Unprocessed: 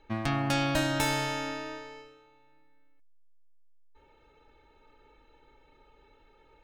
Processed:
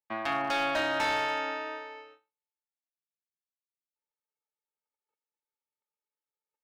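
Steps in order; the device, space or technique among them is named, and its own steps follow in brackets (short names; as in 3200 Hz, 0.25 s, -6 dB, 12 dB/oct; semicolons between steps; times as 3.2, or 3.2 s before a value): walkie-talkie (BPF 520–2800 Hz; hard clip -28 dBFS, distortion -13 dB; gate -58 dBFS, range -42 dB); gain +4.5 dB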